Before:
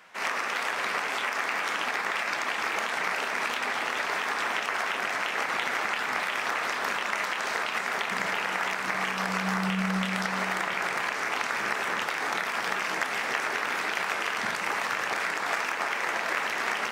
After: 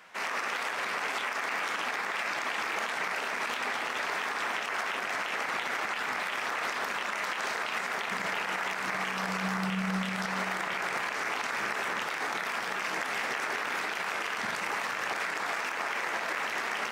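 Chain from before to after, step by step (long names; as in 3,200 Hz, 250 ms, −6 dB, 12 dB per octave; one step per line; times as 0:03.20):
brickwall limiter −22.5 dBFS, peak gain reduction 7 dB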